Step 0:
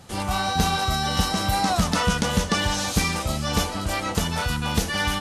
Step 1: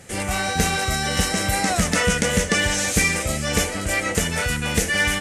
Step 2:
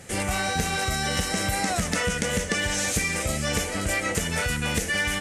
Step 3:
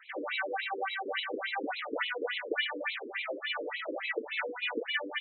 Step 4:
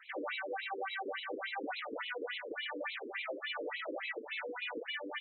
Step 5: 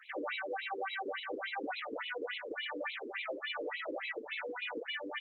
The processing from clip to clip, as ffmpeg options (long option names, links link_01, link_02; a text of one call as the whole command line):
ffmpeg -i in.wav -af "equalizer=frequency=500:width_type=o:width=1:gain=7,equalizer=frequency=1000:width_type=o:width=1:gain=-9,equalizer=frequency=2000:width_type=o:width=1:gain=12,equalizer=frequency=4000:width_type=o:width=1:gain=-6,equalizer=frequency=8000:width_type=o:width=1:gain=10" out.wav
ffmpeg -i in.wav -af "acompressor=threshold=-22dB:ratio=6" out.wav
ffmpeg -i in.wav -af "afftfilt=real='re*between(b*sr/1024,360*pow(3000/360,0.5+0.5*sin(2*PI*3.5*pts/sr))/1.41,360*pow(3000/360,0.5+0.5*sin(2*PI*3.5*pts/sr))*1.41)':imag='im*between(b*sr/1024,360*pow(3000/360,0.5+0.5*sin(2*PI*3.5*pts/sr))/1.41,360*pow(3000/360,0.5+0.5*sin(2*PI*3.5*pts/sr))*1.41)':win_size=1024:overlap=0.75" out.wav
ffmpeg -i in.wav -af "alimiter=level_in=5.5dB:limit=-24dB:level=0:latency=1:release=142,volume=-5.5dB,volume=-1.5dB" out.wav
ffmpeg -i in.wav -af "volume=1dB" -ar 48000 -c:a libopus -b:a 20k out.opus